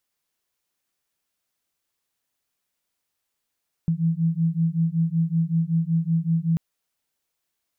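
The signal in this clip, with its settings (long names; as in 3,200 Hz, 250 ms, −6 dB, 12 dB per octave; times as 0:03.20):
two tones that beat 162 Hz, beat 5.3 Hz, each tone −22.5 dBFS 2.69 s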